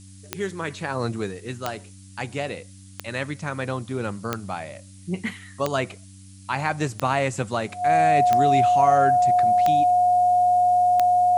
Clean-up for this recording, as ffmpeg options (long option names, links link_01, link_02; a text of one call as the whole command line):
ffmpeg -i in.wav -af "adeclick=threshold=4,bandreject=frequency=96.1:width_type=h:width=4,bandreject=frequency=192.2:width_type=h:width=4,bandreject=frequency=288.3:width_type=h:width=4,bandreject=frequency=720:width=30,afftdn=noise_reduction=22:noise_floor=-45" out.wav